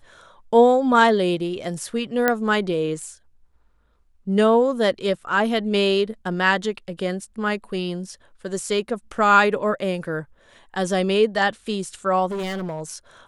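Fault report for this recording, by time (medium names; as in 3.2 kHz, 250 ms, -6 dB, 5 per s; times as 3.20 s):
2.28 s: pop -5 dBFS
12.31–12.82 s: clipped -24.5 dBFS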